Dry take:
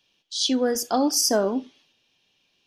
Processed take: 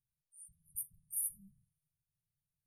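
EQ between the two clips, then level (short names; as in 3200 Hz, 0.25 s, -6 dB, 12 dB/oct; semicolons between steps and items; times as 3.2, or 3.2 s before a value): brick-wall FIR band-stop 170–8700 Hz; -6.0 dB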